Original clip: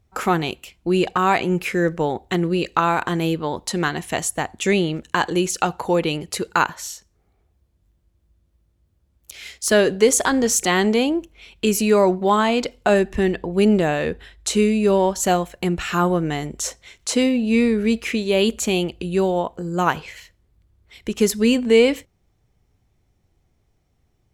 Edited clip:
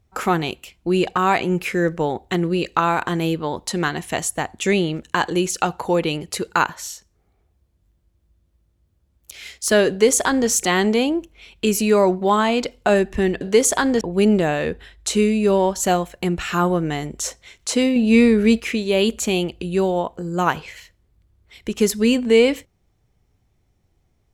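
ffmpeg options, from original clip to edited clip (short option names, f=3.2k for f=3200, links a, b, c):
-filter_complex "[0:a]asplit=5[a][b][c][d][e];[a]atrim=end=13.412[f];[b]atrim=start=9.888:end=10.492[g];[c]atrim=start=13.408:end=17.362[h];[d]atrim=start=17.358:end=18.002,asetpts=PTS-STARTPTS,volume=4dB[i];[e]atrim=start=17.998[j];[f][g]acrossfade=d=0.004:c1=hsin:c2=hsin[k];[k][h]acrossfade=d=0.004:c1=hsin:c2=hsin[l];[l][i]acrossfade=d=0.004:c1=hsin:c2=hsin[m];[m][j]acrossfade=d=0.004:c1=hsin:c2=hsin"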